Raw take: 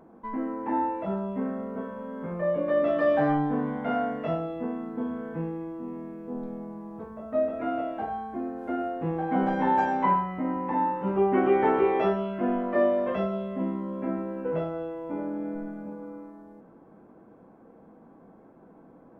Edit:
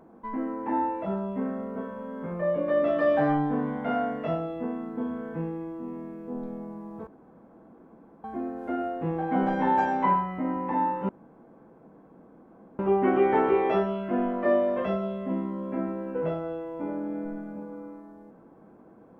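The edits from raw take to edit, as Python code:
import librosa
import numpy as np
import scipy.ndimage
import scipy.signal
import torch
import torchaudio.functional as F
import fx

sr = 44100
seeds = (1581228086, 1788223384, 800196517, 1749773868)

y = fx.edit(x, sr, fx.room_tone_fill(start_s=7.07, length_s=1.17),
    fx.insert_room_tone(at_s=11.09, length_s=1.7), tone=tone)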